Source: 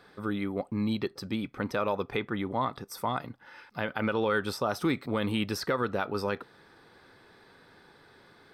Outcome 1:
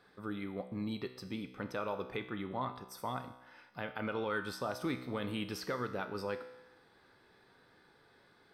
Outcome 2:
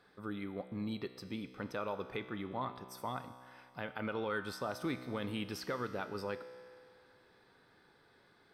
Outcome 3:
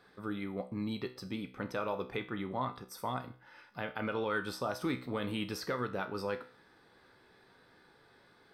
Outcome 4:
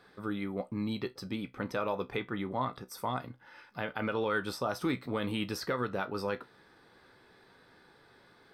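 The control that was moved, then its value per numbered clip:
tuned comb filter, decay: 0.96, 2.2, 0.41, 0.17 seconds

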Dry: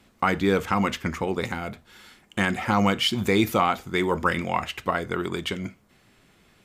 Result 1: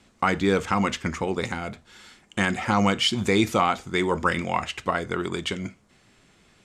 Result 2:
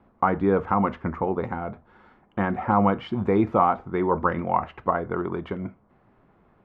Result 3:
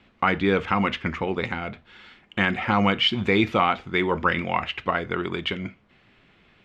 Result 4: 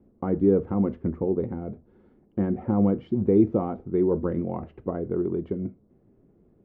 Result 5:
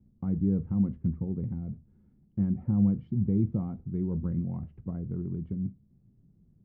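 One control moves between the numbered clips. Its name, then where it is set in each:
low-pass with resonance, frequency: 7,900, 1,000, 2,900, 400, 160 Hertz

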